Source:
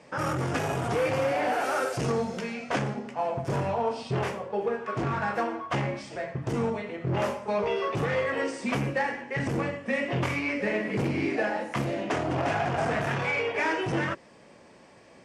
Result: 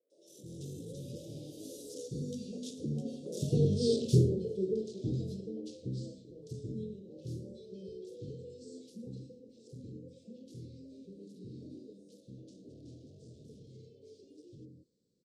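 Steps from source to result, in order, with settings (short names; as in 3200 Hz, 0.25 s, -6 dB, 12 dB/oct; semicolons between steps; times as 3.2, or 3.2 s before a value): Doppler pass-by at 3.75, 23 m/s, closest 7.9 m; Chebyshev band-stop 480–3700 Hz, order 4; dynamic EQ 960 Hz, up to -5 dB, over -54 dBFS, Q 0.81; three bands offset in time mids, highs, lows 0.1/0.27 s, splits 500/1500 Hz; gain +8 dB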